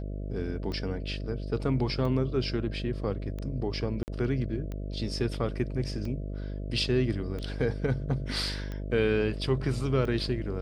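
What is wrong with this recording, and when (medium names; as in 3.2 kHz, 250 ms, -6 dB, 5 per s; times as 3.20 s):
buzz 50 Hz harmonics 13 -35 dBFS
tick 45 rpm -25 dBFS
4.03–4.08 s: dropout 49 ms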